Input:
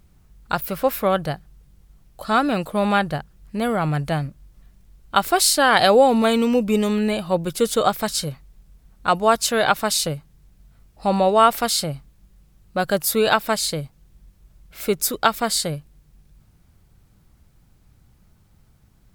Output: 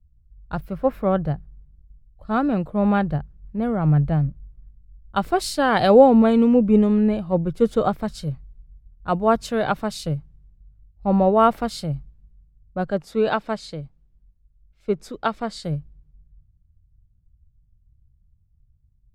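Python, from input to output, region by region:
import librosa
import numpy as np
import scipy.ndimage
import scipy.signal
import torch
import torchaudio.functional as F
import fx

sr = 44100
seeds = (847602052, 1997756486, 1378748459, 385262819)

y = fx.chain(x, sr, fx.lowpass(hz=7400.0, slope=12),
    fx.peak_eq(hz=74.0, db=-8.0, octaves=2.5), at=(12.84, 15.64))
y = fx.lowpass(y, sr, hz=1200.0, slope=6)
y = fx.low_shelf(y, sr, hz=310.0, db=10.5)
y = fx.band_widen(y, sr, depth_pct=70)
y = y * librosa.db_to_amplitude(-4.0)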